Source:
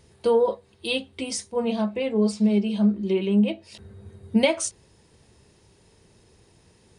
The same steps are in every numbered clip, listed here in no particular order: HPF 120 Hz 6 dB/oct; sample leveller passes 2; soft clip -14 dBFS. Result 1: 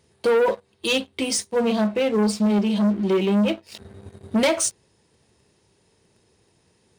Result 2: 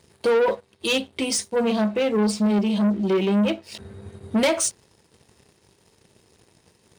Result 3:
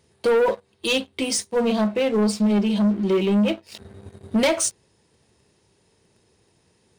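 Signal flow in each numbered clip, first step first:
sample leveller > soft clip > HPF; soft clip > sample leveller > HPF; sample leveller > HPF > soft clip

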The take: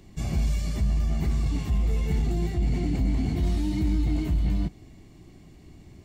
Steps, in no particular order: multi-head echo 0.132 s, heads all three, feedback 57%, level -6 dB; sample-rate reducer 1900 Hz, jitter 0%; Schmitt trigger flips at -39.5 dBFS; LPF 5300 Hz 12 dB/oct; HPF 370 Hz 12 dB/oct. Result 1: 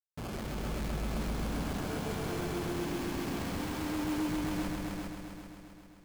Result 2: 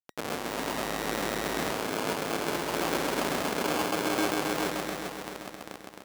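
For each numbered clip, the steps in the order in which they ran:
LPF > sample-rate reducer > HPF > Schmitt trigger > multi-head echo; LPF > Schmitt trigger > multi-head echo > sample-rate reducer > HPF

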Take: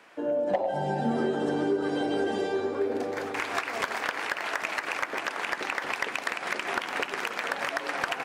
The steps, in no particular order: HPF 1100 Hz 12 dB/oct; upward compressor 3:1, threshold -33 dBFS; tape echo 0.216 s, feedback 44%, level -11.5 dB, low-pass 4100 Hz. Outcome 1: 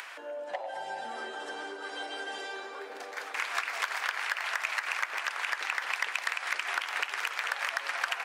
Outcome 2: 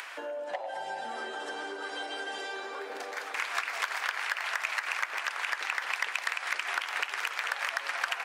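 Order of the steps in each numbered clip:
tape echo > upward compressor > HPF; tape echo > HPF > upward compressor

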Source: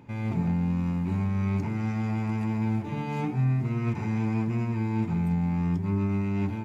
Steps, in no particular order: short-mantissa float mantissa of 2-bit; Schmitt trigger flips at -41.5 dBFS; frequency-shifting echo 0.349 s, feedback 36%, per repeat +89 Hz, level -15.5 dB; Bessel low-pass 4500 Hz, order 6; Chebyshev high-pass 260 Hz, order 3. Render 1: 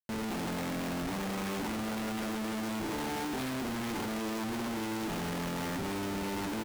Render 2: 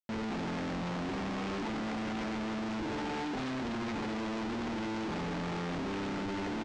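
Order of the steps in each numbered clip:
Bessel low-pass > short-mantissa float > Chebyshev high-pass > Schmitt trigger > frequency-shifting echo; short-mantissa float > frequency-shifting echo > Chebyshev high-pass > Schmitt trigger > Bessel low-pass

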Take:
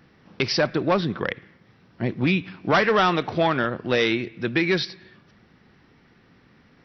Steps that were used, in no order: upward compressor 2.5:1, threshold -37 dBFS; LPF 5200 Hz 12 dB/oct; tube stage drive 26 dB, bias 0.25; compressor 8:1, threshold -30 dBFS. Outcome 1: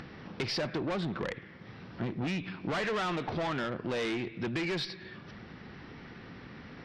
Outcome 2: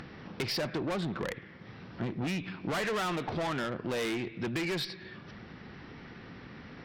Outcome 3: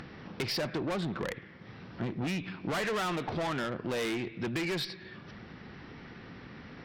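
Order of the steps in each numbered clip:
tube stage > LPF > compressor > upward compressor; LPF > tube stage > compressor > upward compressor; LPF > tube stage > upward compressor > compressor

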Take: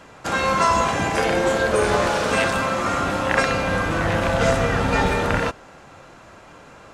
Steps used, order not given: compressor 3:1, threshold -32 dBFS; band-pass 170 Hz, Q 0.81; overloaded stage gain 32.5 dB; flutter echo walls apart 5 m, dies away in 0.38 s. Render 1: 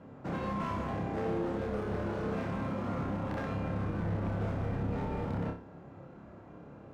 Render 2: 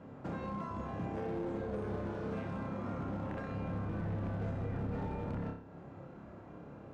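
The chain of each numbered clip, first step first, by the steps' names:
band-pass > compressor > overloaded stage > flutter echo; flutter echo > compressor > band-pass > overloaded stage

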